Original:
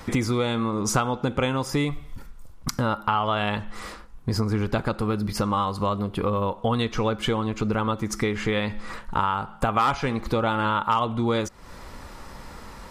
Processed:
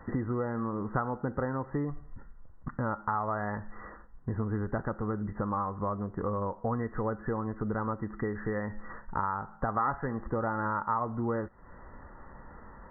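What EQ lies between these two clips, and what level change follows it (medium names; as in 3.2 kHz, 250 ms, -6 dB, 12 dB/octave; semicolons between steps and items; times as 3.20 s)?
brick-wall FIR low-pass 2 kHz; -7.5 dB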